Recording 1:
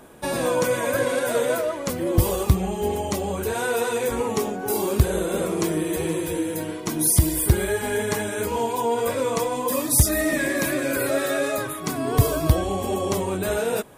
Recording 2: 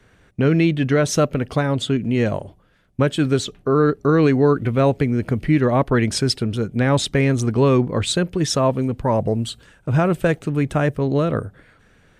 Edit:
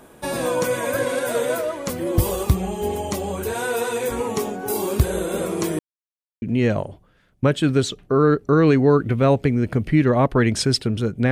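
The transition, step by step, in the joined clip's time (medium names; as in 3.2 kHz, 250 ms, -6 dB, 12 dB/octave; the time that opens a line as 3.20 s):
recording 1
5.79–6.42 s: mute
6.42 s: go over to recording 2 from 1.98 s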